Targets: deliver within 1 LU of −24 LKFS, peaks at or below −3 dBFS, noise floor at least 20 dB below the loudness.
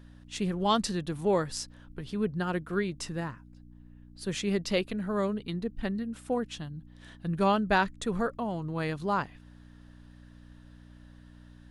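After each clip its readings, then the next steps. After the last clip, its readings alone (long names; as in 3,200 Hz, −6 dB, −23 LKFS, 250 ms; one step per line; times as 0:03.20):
mains hum 60 Hz; hum harmonics up to 300 Hz; level of the hum −51 dBFS; integrated loudness −31.0 LKFS; sample peak −13.0 dBFS; target loudness −24.0 LKFS
→ hum removal 60 Hz, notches 5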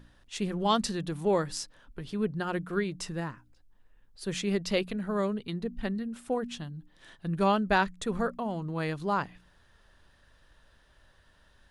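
mains hum none found; integrated loudness −31.0 LKFS; sample peak −12.5 dBFS; target loudness −24.0 LKFS
→ level +7 dB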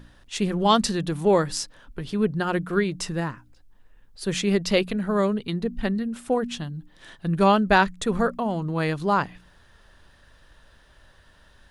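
integrated loudness −24.5 LKFS; sample peak −5.5 dBFS; background noise floor −56 dBFS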